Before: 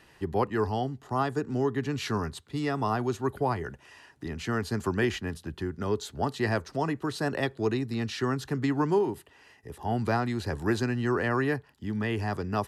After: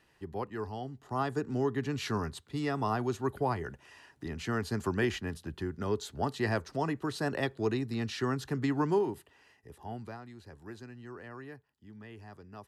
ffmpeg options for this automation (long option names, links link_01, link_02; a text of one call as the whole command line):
ffmpeg -i in.wav -af "volume=-3dB,afade=type=in:start_time=0.8:duration=0.54:silence=0.446684,afade=type=out:start_time=8.94:duration=0.87:silence=0.446684,afade=type=out:start_time=9.81:duration=0.36:silence=0.354813" out.wav